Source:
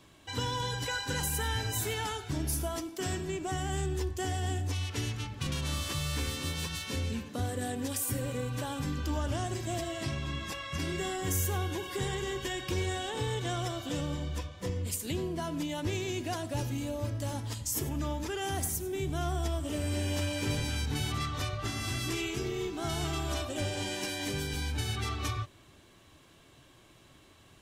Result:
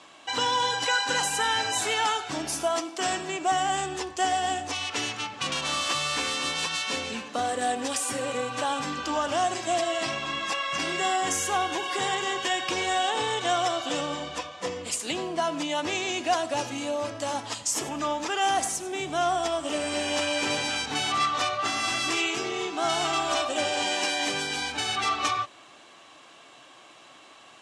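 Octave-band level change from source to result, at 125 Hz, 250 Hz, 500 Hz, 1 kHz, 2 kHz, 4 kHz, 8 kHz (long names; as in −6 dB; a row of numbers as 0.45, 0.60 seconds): −12.0, +1.5, +6.5, +13.0, +10.0, +9.5, +6.5 decibels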